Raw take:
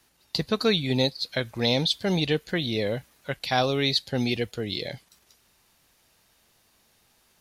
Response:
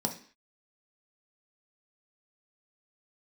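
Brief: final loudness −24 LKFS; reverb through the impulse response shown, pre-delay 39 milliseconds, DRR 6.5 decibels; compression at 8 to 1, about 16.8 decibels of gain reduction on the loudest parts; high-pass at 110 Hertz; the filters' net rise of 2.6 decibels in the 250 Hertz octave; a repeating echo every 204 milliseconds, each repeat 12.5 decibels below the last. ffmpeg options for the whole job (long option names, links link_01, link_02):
-filter_complex "[0:a]highpass=110,equalizer=frequency=250:width_type=o:gain=3.5,acompressor=threshold=-35dB:ratio=8,aecho=1:1:204|408|612:0.237|0.0569|0.0137,asplit=2[link_01][link_02];[1:a]atrim=start_sample=2205,adelay=39[link_03];[link_02][link_03]afir=irnorm=-1:irlink=0,volume=-11.5dB[link_04];[link_01][link_04]amix=inputs=2:normalize=0,volume=12.5dB"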